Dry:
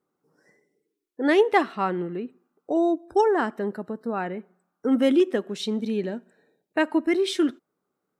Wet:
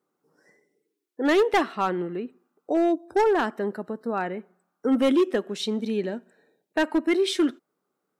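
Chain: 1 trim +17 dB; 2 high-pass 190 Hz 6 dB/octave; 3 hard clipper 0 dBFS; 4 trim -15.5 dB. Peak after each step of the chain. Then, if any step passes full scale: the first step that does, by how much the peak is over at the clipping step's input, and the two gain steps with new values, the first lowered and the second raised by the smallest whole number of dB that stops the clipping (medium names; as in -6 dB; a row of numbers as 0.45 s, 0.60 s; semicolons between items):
+9.0 dBFS, +10.0 dBFS, 0.0 dBFS, -15.5 dBFS; step 1, 10.0 dB; step 1 +7 dB, step 4 -5.5 dB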